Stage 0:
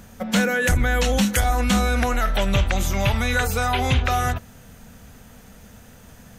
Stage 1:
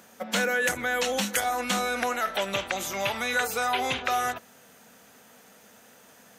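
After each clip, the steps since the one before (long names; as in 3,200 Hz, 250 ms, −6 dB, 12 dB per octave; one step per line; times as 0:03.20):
high-pass filter 350 Hz 12 dB per octave
level −3 dB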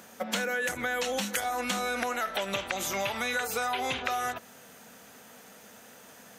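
downward compressor, threshold −30 dBFS, peak gain reduction 9 dB
level +2.5 dB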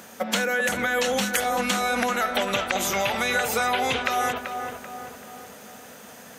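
feedback echo with a low-pass in the loop 386 ms, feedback 52%, low-pass 1,900 Hz, level −6 dB
level +6 dB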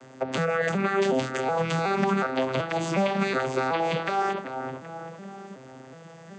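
vocoder with an arpeggio as carrier major triad, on C3, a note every 370 ms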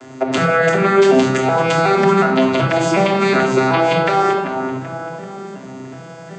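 rectangular room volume 2,900 cubic metres, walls furnished, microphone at 3.1 metres
level +8.5 dB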